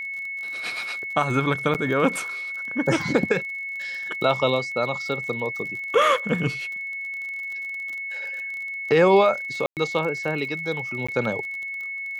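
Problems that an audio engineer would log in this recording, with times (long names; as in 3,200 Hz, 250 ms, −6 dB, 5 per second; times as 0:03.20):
surface crackle 40 per second −32 dBFS
whistle 2,200 Hz −29 dBFS
0:01.74–0:01.75: drop-out 8.3 ms
0:09.66–0:09.77: drop-out 108 ms
0:11.07–0:11.09: drop-out 15 ms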